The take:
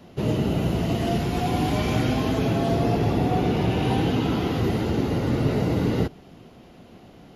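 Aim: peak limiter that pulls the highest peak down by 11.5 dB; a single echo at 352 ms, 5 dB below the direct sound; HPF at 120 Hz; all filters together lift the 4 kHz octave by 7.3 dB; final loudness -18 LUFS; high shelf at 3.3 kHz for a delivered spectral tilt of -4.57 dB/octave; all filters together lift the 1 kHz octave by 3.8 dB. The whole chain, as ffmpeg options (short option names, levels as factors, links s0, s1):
-af "highpass=120,equalizer=f=1000:t=o:g=5,highshelf=f=3300:g=5,equalizer=f=4000:t=o:g=6,alimiter=limit=0.0841:level=0:latency=1,aecho=1:1:352:0.562,volume=3.55"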